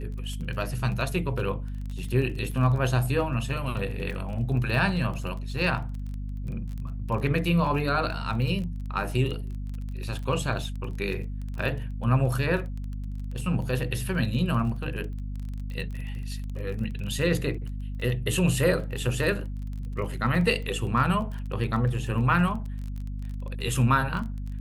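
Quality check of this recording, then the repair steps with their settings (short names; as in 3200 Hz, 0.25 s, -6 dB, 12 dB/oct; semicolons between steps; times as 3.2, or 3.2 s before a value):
crackle 23/s -34 dBFS
hum 50 Hz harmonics 5 -33 dBFS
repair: de-click; de-hum 50 Hz, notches 5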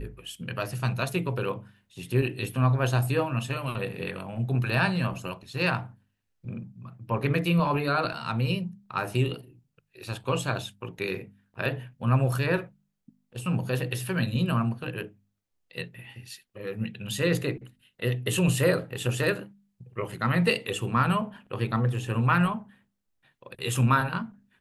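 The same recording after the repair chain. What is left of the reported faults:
none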